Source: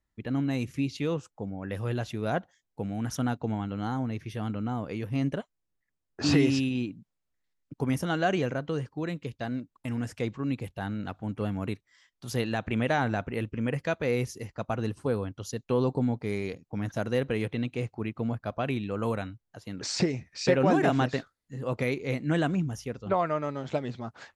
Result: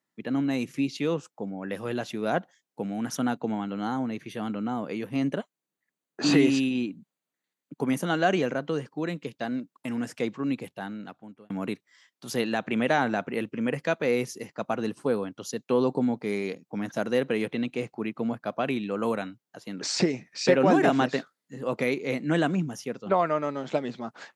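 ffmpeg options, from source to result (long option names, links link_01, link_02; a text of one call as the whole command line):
ffmpeg -i in.wav -filter_complex "[0:a]asettb=1/sr,asplit=3[link_01][link_02][link_03];[link_01]atrim=end=3.154[link_04];[link_02]atrim=start=3.15:end=8.15,asetpts=PTS-STARTPTS,afade=type=in:duration=0.004:curve=qsin,afade=type=out:start_time=4.996:duration=0.004:curve=qsin,asuperstop=centerf=5300:order=4:qfactor=7.7[link_05];[link_03]atrim=start=8.146[link_06];[link_04][link_05]acrossfade=duration=0.004:curve1=hsin:curve2=qsin[link_07];[link_07][link_06]acrossfade=duration=0.004:curve1=qsin:curve2=hsin,asplit=2[link_08][link_09];[link_08]atrim=end=11.5,asetpts=PTS-STARTPTS,afade=type=out:start_time=10.52:duration=0.98[link_10];[link_09]atrim=start=11.5,asetpts=PTS-STARTPTS,afade=type=in:duration=0.004:curve=hsin[link_11];[link_10][link_11]concat=n=2:v=0:a=1,highpass=frequency=170:width=0.5412,highpass=frequency=170:width=1.3066,volume=3dB" out.wav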